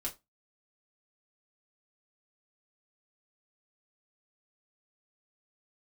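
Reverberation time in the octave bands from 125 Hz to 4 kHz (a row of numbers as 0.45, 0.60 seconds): 0.20, 0.25, 0.20, 0.20, 0.20, 0.20 seconds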